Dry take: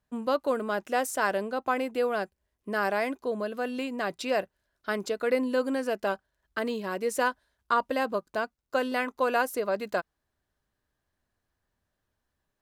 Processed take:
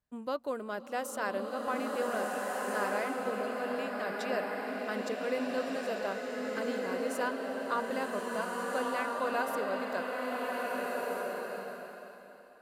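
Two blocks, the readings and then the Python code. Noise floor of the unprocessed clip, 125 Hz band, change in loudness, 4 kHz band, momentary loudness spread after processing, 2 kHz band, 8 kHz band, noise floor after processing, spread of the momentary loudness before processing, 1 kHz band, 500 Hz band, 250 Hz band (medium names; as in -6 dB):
-82 dBFS, no reading, -5.0 dB, -4.0 dB, 5 LU, -3.5 dB, -4.0 dB, -51 dBFS, 7 LU, -4.0 dB, -4.0 dB, -4.0 dB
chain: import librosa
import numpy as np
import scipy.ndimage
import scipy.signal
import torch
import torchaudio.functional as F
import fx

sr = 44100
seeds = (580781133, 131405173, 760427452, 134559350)

y = fx.rev_bloom(x, sr, seeds[0], attack_ms=1640, drr_db=-2.0)
y = y * 10.0 ** (-8.0 / 20.0)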